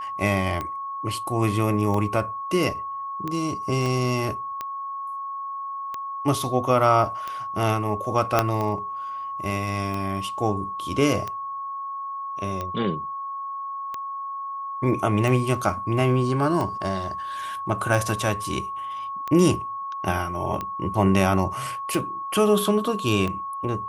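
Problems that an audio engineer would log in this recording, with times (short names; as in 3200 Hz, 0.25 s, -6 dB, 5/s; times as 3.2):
tick 45 rpm -16 dBFS
tone 1100 Hz -29 dBFS
3.86 pop
8.39 pop -4 dBFS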